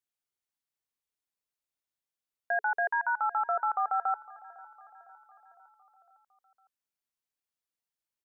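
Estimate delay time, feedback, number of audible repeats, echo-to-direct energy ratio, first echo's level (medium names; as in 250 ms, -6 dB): 506 ms, 58%, 3, -19.0 dB, -21.0 dB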